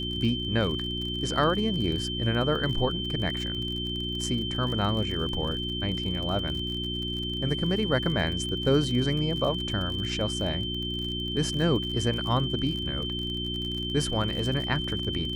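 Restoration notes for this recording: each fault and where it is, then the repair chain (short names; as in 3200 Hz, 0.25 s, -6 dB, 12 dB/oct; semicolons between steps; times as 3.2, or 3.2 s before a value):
crackle 44/s -33 dBFS
hum 60 Hz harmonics 6 -34 dBFS
tone 3100 Hz -32 dBFS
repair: de-click; de-hum 60 Hz, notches 6; notch 3100 Hz, Q 30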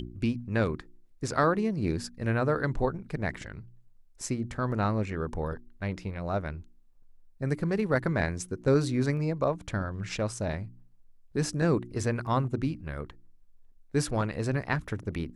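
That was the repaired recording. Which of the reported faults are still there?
none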